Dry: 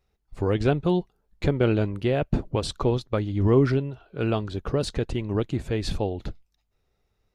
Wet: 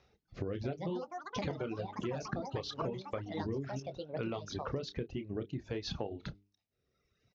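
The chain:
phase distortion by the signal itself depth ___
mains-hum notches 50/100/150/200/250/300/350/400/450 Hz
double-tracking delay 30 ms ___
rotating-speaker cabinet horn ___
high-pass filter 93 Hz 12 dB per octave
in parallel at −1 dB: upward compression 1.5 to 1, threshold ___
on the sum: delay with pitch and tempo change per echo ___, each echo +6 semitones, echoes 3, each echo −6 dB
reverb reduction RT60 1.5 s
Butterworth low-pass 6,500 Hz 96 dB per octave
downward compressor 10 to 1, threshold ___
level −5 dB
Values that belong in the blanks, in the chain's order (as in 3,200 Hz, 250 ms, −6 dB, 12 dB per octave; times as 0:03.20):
0.05 ms, −8.5 dB, 0.6 Hz, −29 dBFS, 342 ms, −29 dBFS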